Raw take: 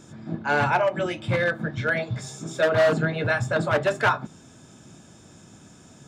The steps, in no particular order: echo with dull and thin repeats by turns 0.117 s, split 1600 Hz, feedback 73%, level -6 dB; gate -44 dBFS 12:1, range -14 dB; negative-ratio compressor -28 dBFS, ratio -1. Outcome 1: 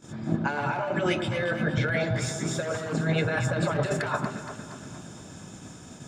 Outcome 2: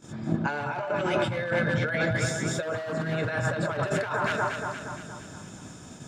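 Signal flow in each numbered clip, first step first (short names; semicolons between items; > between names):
negative-ratio compressor > echo with dull and thin repeats by turns > gate; echo with dull and thin repeats by turns > negative-ratio compressor > gate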